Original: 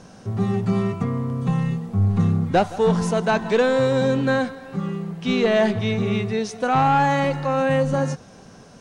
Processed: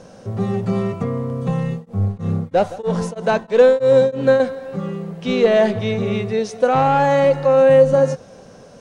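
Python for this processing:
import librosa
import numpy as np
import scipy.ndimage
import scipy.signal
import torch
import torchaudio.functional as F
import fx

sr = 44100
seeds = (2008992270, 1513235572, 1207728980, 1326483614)

y = fx.peak_eq(x, sr, hz=530.0, db=11.0, octaves=0.48)
y = fx.tremolo_abs(y, sr, hz=3.1, at=(1.7, 4.4))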